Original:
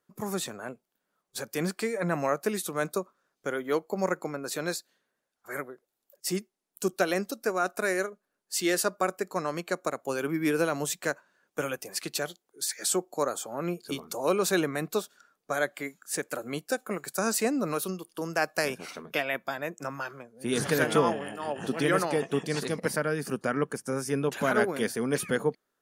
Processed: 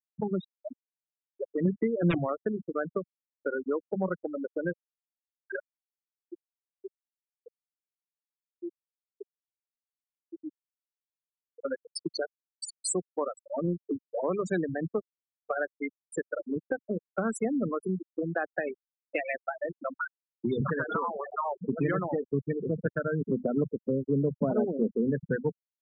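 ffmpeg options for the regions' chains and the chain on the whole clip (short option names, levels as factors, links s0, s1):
-filter_complex "[0:a]asettb=1/sr,asplit=3[s0][s1][s2];[s0]atrim=end=1.654[s3];[s1]atrim=start=1.65:end=2.18,asetpts=PTS-STARTPTS,afade=t=in:d=0.004:c=qsin,afade=t=out:st=0.526:d=0.004:c=qsin,equalizer=f=320:w=1.5:g=11.5,aeval=exprs='(mod(5.01*val(0)+1,2)-1)/5.01':c=same[s4];[s2]atrim=start=2.176[s5];[s3][s4]acrossfade=d=0.004:c1=hsin:c2=qsin[s6];[s6][s5]acrossfade=d=0.004:c1=qsin:c2=hsin,asettb=1/sr,asplit=3[s7][s8][s9];[s7]atrim=end=5.594[s10];[s8]atrim=start=5.59:end=11.65,asetpts=PTS-STARTPTS,afade=t=in:d=0.004:c=qsin,afade=t=out:st=6.056:d=0.004:c=qsin,highpass=140,lowpass=2400,acompressor=threshold=0.01:ratio=8:attack=3.2:release=140:knee=1:detection=peak,aecho=1:1:254|508|762:0.224|0.056|0.014,atrim=end_sample=267246[s11];[s9]atrim=start=11.646[s12];[s10][s11]acrossfade=d=0.004:c1=hsin:c2=qsin[s13];[s13][s12]acrossfade=d=0.004:c1=qsin:c2=hsin,asettb=1/sr,asplit=3[s14][s15][s16];[s14]atrim=end=20.664[s17];[s15]atrim=start=20.66:end=21.52,asetpts=PTS-STARTPTS,afade=t=in:d=0.004:c=qsin,afade=t=out:st=0.856:d=0.004:c=qsin,equalizer=f=1100:w=1.3:g=12,acompressor=threshold=0.0501:ratio=3:attack=3.2:release=140:knee=1:detection=peak[s18];[s16]atrim=start=21.516[s19];[s17][s18]acrossfade=d=0.004:c1=hsin:c2=qsin[s20];[s20][s19]acrossfade=d=0.004:c1=qsin:c2=hsin,asettb=1/sr,asplit=3[s21][s22][s23];[s21]atrim=end=23.214[s24];[s22]atrim=start=23.21:end=25.1,asetpts=PTS-STARTPTS,afade=t=in:d=0.004:c=qsin,afade=t=out:st=1.886:d=0.004:c=qsin,asuperpass=centerf=360:order=4:qfactor=0.57,acontrast=36[s25];[s23]atrim=start=25.096[s26];[s24][s25]acrossfade=d=0.004:c1=hsin:c2=qsin[s27];[s27][s26]acrossfade=d=0.004:c1=qsin:c2=hsin,bandreject=f=50:t=h:w=6,bandreject=f=100:t=h:w=6,bandreject=f=150:t=h:w=6,bandreject=f=200:t=h:w=6,bandreject=f=250:t=h:w=6,afftfilt=real='re*gte(hypot(re,im),0.1)':imag='im*gte(hypot(re,im),0.1)':win_size=1024:overlap=0.75,acrossover=split=160[s28][s29];[s29]acompressor=threshold=0.0112:ratio=4[s30];[s28][s30]amix=inputs=2:normalize=0,volume=2.82"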